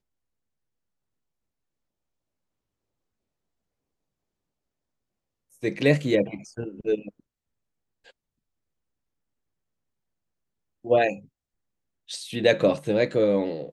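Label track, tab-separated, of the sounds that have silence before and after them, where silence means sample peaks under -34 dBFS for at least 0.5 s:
5.630000	7.080000	sound
10.850000	11.160000	sound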